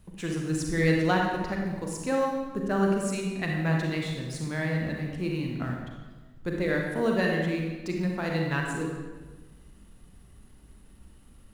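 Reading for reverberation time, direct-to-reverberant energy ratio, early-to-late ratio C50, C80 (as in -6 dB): 1.3 s, -0.5 dB, 1.5 dB, 3.5 dB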